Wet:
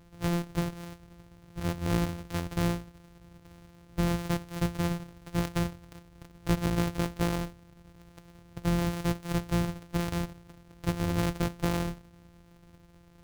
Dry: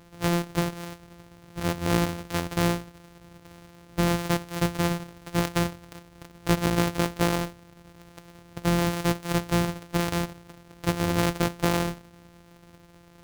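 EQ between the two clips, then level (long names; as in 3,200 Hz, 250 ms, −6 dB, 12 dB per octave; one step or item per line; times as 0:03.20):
low-shelf EQ 150 Hz +10.5 dB
−7.5 dB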